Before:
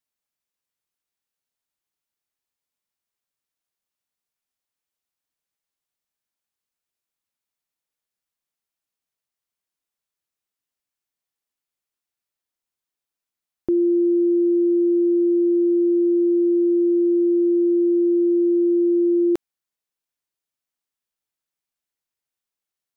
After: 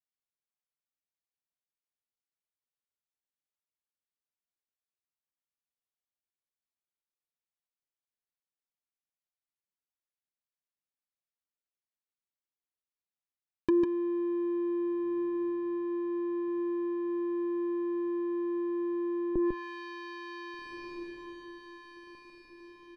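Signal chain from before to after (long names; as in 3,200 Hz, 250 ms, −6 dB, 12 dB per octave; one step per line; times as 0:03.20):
in parallel at −8.5 dB: comparator with hysteresis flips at −40 dBFS
on the sum: leveller curve on the samples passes 3
on a send: feedback delay with all-pass diffusion 1,608 ms, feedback 41%, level −14 dB
on the sum: treble cut that deepens with the level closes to 460 Hz, closed at −16 dBFS
high-frequency loss of the air 120 metres
single-tap delay 149 ms −4 dB
level −7 dB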